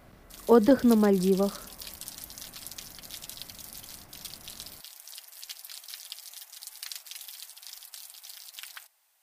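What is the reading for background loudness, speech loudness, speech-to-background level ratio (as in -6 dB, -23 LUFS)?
-41.5 LUFS, -23.0 LUFS, 18.5 dB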